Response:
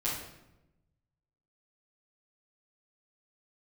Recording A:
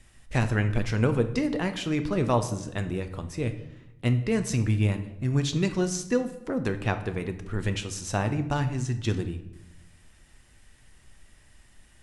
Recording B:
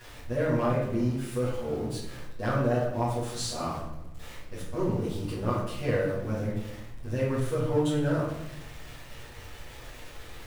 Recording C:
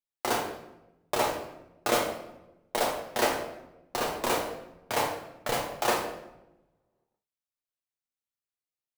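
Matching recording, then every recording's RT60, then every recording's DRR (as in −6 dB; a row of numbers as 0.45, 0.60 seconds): B; 1.0, 0.95, 0.95 seconds; 7.5, −10.0, −1.5 decibels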